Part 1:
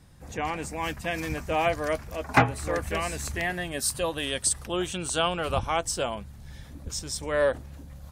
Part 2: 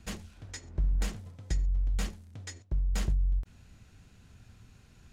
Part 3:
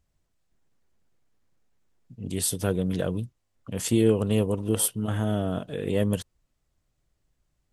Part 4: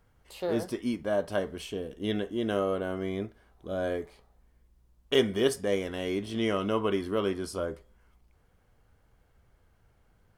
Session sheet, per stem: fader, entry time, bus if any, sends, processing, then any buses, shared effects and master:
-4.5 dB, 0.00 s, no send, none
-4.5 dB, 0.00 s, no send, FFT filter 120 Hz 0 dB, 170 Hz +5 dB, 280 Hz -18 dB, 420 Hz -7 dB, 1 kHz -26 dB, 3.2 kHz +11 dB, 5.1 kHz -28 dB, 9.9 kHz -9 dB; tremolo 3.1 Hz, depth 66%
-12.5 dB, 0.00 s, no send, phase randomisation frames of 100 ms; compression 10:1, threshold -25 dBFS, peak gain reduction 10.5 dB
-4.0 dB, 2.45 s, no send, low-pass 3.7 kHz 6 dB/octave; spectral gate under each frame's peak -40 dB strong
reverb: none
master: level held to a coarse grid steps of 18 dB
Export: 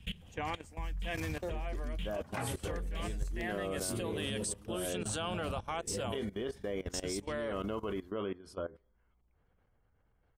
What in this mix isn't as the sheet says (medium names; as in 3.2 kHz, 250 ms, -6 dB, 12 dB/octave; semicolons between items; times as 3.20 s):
stem 2 -4.5 dB -> +7.0 dB; stem 3: missing compression 10:1, threshold -25 dBFS, peak gain reduction 10.5 dB; stem 4: entry 2.45 s -> 1.00 s